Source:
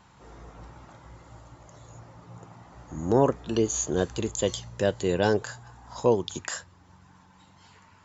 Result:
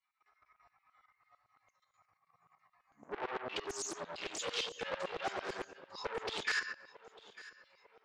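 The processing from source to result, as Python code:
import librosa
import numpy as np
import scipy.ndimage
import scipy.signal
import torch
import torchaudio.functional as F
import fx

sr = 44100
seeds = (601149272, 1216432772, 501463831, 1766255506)

p1 = fx.bin_expand(x, sr, power=2.0)
p2 = fx.room_shoebox(p1, sr, seeds[0], volume_m3=150.0, walls='mixed', distance_m=1.4)
p3 = fx.over_compress(p2, sr, threshold_db=-27.0, ratio=-1.0)
p4 = p2 + F.gain(torch.from_numpy(p3), 2.5).numpy()
p5 = fx.pitch_keep_formants(p4, sr, semitones=-1.5)
p6 = fx.level_steps(p5, sr, step_db=14)
p7 = 10.0 ** (-31.0 / 20.0) * np.tanh(p6 / 10.0 ** (-31.0 / 20.0))
p8 = p7 + fx.echo_feedback(p7, sr, ms=899, feedback_pct=43, wet_db=-18.5, dry=0)
p9 = fx.filter_lfo_highpass(p8, sr, shape='saw_down', hz=8.9, low_hz=550.0, high_hz=3100.0, q=0.75)
p10 = fx.air_absorb(p9, sr, metres=120.0)
p11 = fx.doppler_dist(p10, sr, depth_ms=0.6)
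y = F.gain(torch.from_numpy(p11), 5.0).numpy()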